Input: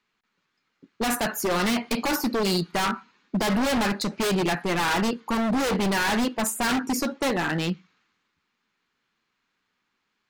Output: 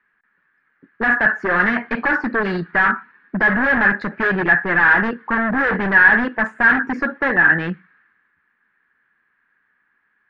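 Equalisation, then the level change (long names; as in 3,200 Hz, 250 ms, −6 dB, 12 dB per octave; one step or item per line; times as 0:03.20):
low-pass with resonance 1,700 Hz, resonance Q 9.4
high-frequency loss of the air 72 metres
+2.0 dB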